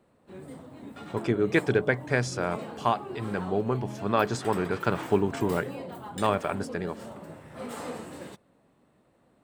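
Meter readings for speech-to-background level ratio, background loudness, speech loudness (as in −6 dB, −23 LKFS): 12.0 dB, −40.5 LKFS, −28.5 LKFS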